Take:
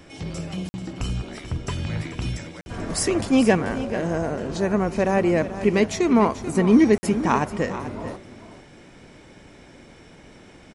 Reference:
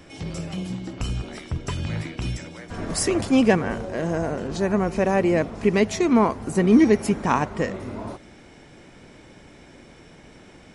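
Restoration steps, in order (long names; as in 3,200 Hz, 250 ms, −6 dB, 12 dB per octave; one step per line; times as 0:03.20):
repair the gap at 0:00.69/0:02.61/0:06.98, 50 ms
echo removal 437 ms −12.5 dB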